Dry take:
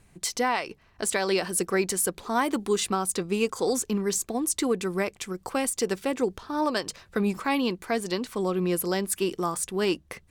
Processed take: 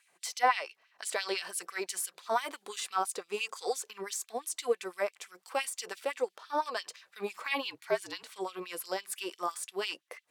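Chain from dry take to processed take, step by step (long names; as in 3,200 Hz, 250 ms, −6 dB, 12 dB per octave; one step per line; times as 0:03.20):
auto-filter high-pass sine 5.9 Hz 500–3,300 Hz
0:07.65–0:08.23: frequency shifter −57 Hz
harmonic and percussive parts rebalanced percussive −8 dB
level −2 dB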